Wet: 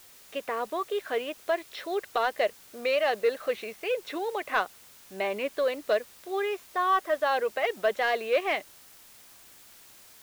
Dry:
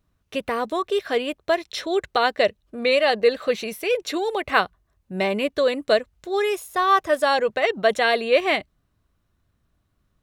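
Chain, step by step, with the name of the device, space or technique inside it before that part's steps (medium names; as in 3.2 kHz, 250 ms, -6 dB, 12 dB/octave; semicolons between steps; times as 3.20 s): tape answering machine (band-pass 370–3000 Hz; saturation -9 dBFS, distortion -21 dB; wow and flutter; white noise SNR 23 dB); trim -5 dB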